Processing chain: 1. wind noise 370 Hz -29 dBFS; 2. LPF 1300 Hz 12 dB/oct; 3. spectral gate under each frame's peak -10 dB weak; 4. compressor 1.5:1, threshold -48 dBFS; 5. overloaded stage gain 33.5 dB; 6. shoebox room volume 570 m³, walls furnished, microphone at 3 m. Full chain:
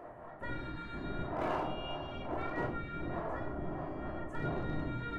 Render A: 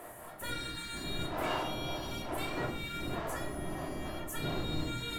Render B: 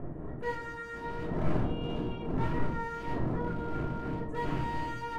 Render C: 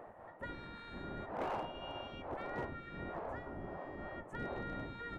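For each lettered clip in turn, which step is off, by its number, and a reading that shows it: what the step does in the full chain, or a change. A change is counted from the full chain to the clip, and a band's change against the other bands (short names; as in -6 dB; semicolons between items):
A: 2, 4 kHz band +11.0 dB; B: 3, 125 Hz band +4.0 dB; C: 6, crest factor change -4.5 dB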